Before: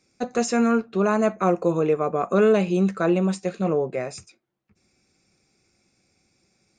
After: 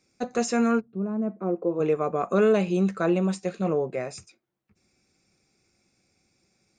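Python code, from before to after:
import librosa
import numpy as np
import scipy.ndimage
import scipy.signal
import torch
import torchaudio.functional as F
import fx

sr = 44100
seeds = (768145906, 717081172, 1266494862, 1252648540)

y = fx.bandpass_q(x, sr, hz=fx.line((0.79, 110.0), (1.79, 450.0)), q=1.3, at=(0.79, 1.79), fade=0.02)
y = F.gain(torch.from_numpy(y), -2.5).numpy()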